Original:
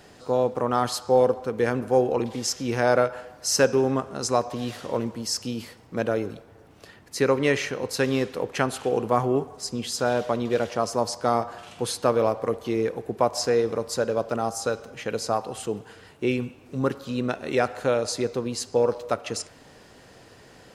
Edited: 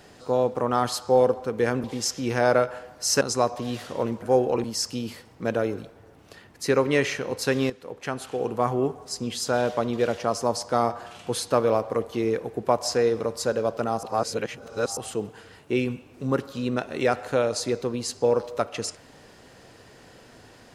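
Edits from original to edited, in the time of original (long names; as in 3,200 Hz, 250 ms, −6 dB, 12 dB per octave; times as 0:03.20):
0:01.84–0:02.26: move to 0:05.16
0:03.63–0:04.15: remove
0:08.22–0:09.96: fade in equal-power, from −14 dB
0:14.55–0:15.49: reverse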